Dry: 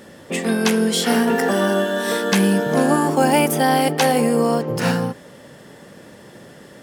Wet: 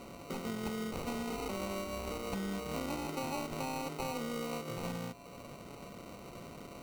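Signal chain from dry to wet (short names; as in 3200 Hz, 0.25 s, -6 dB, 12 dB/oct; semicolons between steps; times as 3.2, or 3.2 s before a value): tracing distortion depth 0.2 ms; compressor 3:1, threshold -35 dBFS, peak gain reduction 17 dB; whine 1000 Hz -49 dBFS; sample-and-hold 26×; gain -6 dB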